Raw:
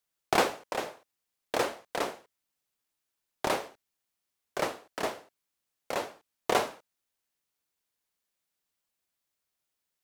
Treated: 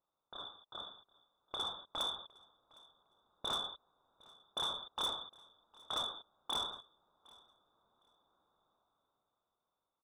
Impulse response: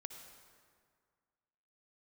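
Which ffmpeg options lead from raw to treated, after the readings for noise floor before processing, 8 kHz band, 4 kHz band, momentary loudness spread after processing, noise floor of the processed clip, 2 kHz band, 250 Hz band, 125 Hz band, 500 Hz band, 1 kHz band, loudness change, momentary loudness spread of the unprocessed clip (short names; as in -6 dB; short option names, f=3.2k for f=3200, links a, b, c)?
-85 dBFS, -11.5 dB, +3.0 dB, 15 LU, under -85 dBFS, -19.0 dB, -18.0 dB, -13.0 dB, -19.0 dB, -12.0 dB, -7.0 dB, 14 LU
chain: -filter_complex "[0:a]highpass=f=550:p=1,acompressor=threshold=-42dB:ratio=6,alimiter=level_in=9.5dB:limit=-24dB:level=0:latency=1:release=36,volume=-9.5dB,asuperstop=centerf=1100:order=20:qfactor=0.51,dynaudnorm=f=280:g=11:m=14dB,lowpass=f=3.3k:t=q:w=0.5098,lowpass=f=3.3k:t=q:w=0.6013,lowpass=f=3.3k:t=q:w=0.9,lowpass=f=3.3k:t=q:w=2.563,afreqshift=-3900,asoftclip=type=tanh:threshold=-39.5dB,asplit=2[a][b];[b]aecho=0:1:759|1518:0.0631|0.0114[c];[a][c]amix=inputs=2:normalize=0,volume=8.5dB"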